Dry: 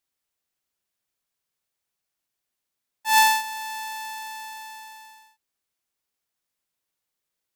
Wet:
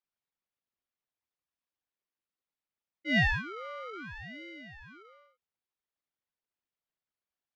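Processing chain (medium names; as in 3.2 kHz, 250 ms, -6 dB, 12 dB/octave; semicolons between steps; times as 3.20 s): resonances exaggerated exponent 2; distance through air 230 m; ring modulator with a swept carrier 760 Hz, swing 60%, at 0.67 Hz; trim -4 dB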